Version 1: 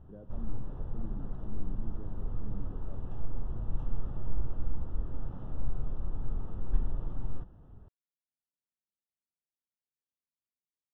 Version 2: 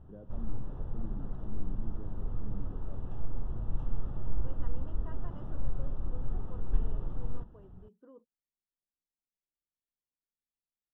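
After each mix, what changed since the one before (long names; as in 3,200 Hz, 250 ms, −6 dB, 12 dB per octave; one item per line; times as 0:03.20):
second voice: unmuted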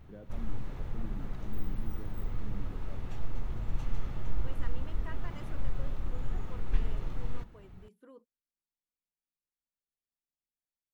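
master: remove moving average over 20 samples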